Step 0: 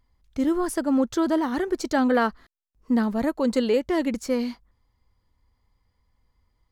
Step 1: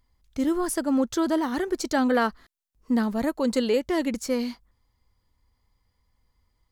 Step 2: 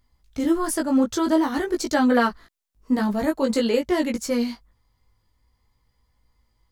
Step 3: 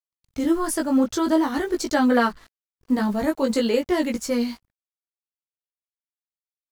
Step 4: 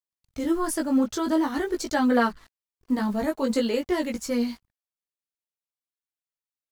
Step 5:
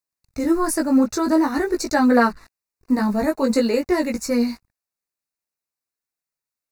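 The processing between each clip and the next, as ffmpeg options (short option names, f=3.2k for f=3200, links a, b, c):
-af "highshelf=f=3.7k:g=6,volume=-1.5dB"
-af "flanger=delay=16.5:depth=3.1:speed=0.49,volume=6dB"
-af "acrusher=bits=7:mix=0:aa=0.5"
-af "aphaser=in_gain=1:out_gain=1:delay=4.9:decay=0.23:speed=0.45:type=triangular,volume=-3.5dB"
-af "asuperstop=centerf=3200:order=4:qfactor=3.1,volume=5.5dB"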